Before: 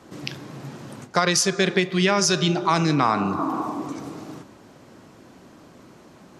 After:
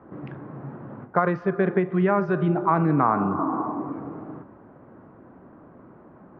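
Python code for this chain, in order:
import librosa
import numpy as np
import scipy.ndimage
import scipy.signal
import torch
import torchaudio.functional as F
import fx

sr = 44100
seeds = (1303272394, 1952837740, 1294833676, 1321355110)

y = scipy.signal.sosfilt(scipy.signal.butter(4, 1500.0, 'lowpass', fs=sr, output='sos'), x)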